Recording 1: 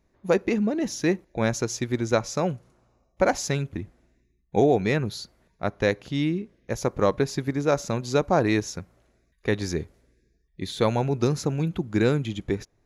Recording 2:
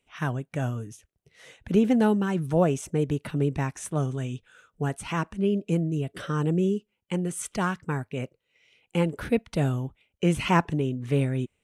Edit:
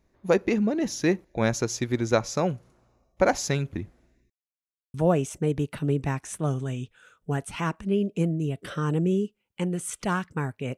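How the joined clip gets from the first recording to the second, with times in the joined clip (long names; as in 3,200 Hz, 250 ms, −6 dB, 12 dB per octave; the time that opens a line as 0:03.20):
recording 1
0:04.30–0:04.94: silence
0:04.94: continue with recording 2 from 0:02.46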